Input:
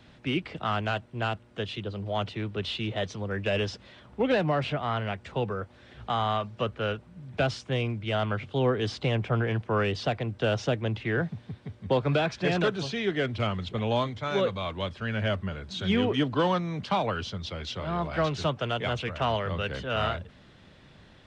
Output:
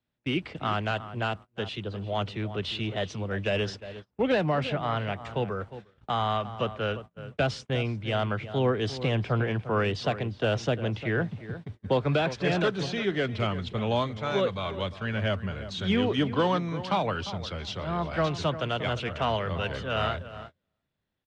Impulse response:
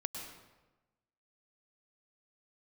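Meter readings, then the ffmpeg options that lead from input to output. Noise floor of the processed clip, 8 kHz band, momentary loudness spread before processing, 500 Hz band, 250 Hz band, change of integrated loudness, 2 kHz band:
-80 dBFS, n/a, 8 LU, 0.0 dB, +0.5 dB, 0.0 dB, 0.0 dB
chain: -filter_complex "[0:a]asplit=2[a][b];[b]adelay=351,lowpass=f=2k:p=1,volume=-12.5dB,asplit=2[c][d];[d]adelay=351,lowpass=f=2k:p=1,volume=0.19[e];[a][c][e]amix=inputs=3:normalize=0,agate=range=-30dB:threshold=-40dB:ratio=16:detection=peak"

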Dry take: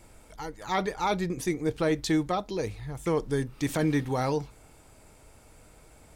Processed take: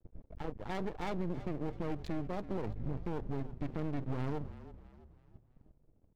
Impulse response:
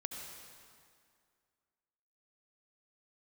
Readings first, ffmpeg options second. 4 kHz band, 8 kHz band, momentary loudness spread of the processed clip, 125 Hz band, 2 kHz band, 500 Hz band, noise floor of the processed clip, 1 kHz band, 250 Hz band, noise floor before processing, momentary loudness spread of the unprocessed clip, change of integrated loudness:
-16.5 dB, under -20 dB, 11 LU, -6.0 dB, -14.0 dB, -11.5 dB, -70 dBFS, -12.5 dB, -9.5 dB, -55 dBFS, 8 LU, -10.5 dB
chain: -filter_complex "[0:a]bandreject=f=60:t=h:w=6,bandreject=f=120:t=h:w=6,adynamicsmooth=sensitivity=5:basefreq=540,lowpass=2.4k,equalizer=f=1.2k:w=0.67:g=-14,alimiter=level_in=5dB:limit=-24dB:level=0:latency=1:release=206,volume=-5dB,acompressor=threshold=-40dB:ratio=2,aeval=exprs='max(val(0),0)':c=same,agate=range=-18dB:threshold=-54dB:ratio=16:detection=peak,asoftclip=type=tanh:threshold=-33.5dB,asplit=2[a][b];[b]asplit=4[c][d][e][f];[c]adelay=330,afreqshift=-35,volume=-15dB[g];[d]adelay=660,afreqshift=-70,volume=-22.3dB[h];[e]adelay=990,afreqshift=-105,volume=-29.7dB[i];[f]adelay=1320,afreqshift=-140,volume=-37dB[j];[g][h][i][j]amix=inputs=4:normalize=0[k];[a][k]amix=inputs=2:normalize=0,volume=9dB"

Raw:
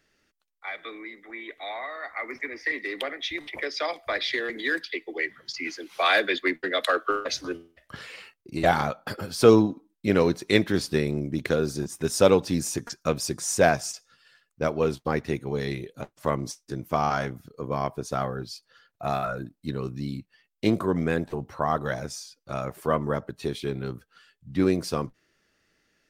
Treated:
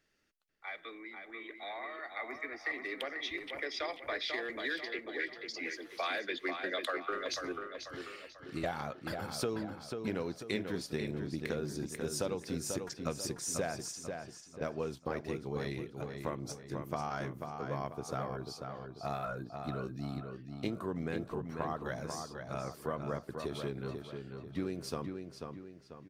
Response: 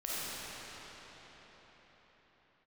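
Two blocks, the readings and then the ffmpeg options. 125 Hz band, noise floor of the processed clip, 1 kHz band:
-10.5 dB, -55 dBFS, -11.5 dB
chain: -filter_complex "[0:a]acompressor=threshold=-24dB:ratio=10,asplit=2[a][b];[b]adelay=491,lowpass=f=4k:p=1,volume=-5.5dB,asplit=2[c][d];[d]adelay=491,lowpass=f=4k:p=1,volume=0.44,asplit=2[e][f];[f]adelay=491,lowpass=f=4k:p=1,volume=0.44,asplit=2[g][h];[h]adelay=491,lowpass=f=4k:p=1,volume=0.44,asplit=2[i][j];[j]adelay=491,lowpass=f=4k:p=1,volume=0.44[k];[a][c][e][g][i][k]amix=inputs=6:normalize=0,volume=-8dB"

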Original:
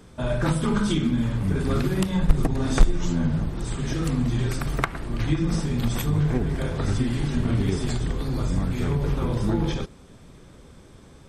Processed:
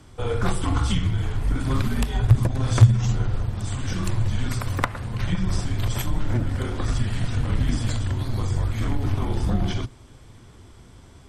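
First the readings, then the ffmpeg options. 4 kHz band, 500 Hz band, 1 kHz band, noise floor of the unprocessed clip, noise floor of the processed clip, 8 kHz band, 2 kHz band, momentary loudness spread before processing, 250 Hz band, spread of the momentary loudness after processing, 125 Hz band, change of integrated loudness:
+1.0 dB, -3.5 dB, +1.0 dB, -49 dBFS, -47 dBFS, +1.0 dB, 0.0 dB, 5 LU, -4.5 dB, 8 LU, +3.0 dB, +0.5 dB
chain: -af "aeval=exprs='0.596*(cos(1*acos(clip(val(0)/0.596,-1,1)))-cos(1*PI/2))+0.0266*(cos(6*acos(clip(val(0)/0.596,-1,1)))-cos(6*PI/2))':c=same,afreqshift=-140,volume=1dB"

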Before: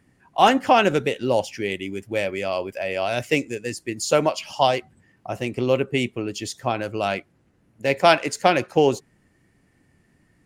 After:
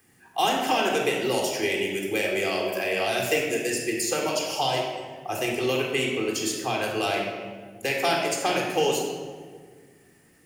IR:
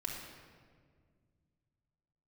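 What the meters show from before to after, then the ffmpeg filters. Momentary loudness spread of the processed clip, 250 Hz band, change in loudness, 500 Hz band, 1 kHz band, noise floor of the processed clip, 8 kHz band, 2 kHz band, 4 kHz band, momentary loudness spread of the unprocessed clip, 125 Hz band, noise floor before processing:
9 LU, -4.0 dB, -3.0 dB, -4.0 dB, -5.5 dB, -57 dBFS, +3.5 dB, -1.0 dB, +0.5 dB, 12 LU, -6.5 dB, -63 dBFS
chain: -filter_complex "[0:a]aemphasis=mode=production:type=bsi,acrossover=split=330|710|1800[a][b][c][d];[a]acompressor=threshold=-38dB:ratio=4[e];[b]acompressor=threshold=-31dB:ratio=4[f];[c]acompressor=threshold=-35dB:ratio=4[g];[d]acompressor=threshold=-31dB:ratio=4[h];[e][f][g][h]amix=inputs=4:normalize=0[i];[1:a]atrim=start_sample=2205,asetrate=52920,aresample=44100[j];[i][j]afir=irnorm=-1:irlink=0,volume=4.5dB"

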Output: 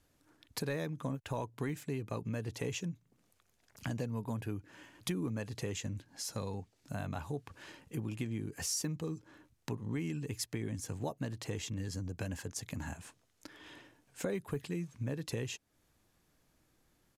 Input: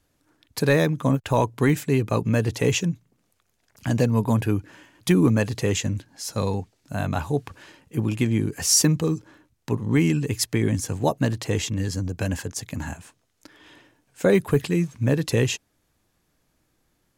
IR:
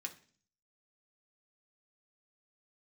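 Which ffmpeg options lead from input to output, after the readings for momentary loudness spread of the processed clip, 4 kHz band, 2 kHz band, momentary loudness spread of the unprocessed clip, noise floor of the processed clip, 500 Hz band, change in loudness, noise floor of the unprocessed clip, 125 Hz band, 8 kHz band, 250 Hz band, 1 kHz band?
10 LU, -14.5 dB, -15.5 dB, 12 LU, -75 dBFS, -17.0 dB, -16.0 dB, -71 dBFS, -15.5 dB, -15.0 dB, -16.5 dB, -16.0 dB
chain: -af "acompressor=threshold=-36dB:ratio=3,aresample=32000,aresample=44100,volume=-3dB"

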